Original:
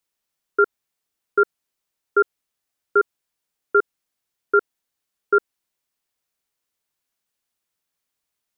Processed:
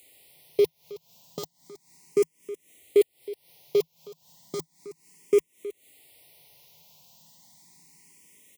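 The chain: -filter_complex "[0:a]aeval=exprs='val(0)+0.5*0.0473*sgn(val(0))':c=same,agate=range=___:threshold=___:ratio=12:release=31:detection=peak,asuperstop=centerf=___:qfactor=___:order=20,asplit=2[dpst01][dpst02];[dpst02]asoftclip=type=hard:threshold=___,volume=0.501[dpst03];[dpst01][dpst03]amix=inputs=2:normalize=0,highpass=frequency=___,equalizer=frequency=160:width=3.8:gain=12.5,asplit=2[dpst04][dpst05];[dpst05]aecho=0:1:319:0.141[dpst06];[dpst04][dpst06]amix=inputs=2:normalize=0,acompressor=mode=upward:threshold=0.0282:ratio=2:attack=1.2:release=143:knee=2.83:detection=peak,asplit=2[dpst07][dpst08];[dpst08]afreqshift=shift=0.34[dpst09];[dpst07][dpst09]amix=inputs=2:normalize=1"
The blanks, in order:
0.00891, 0.0631, 1400, 1.7, 0.0422, 78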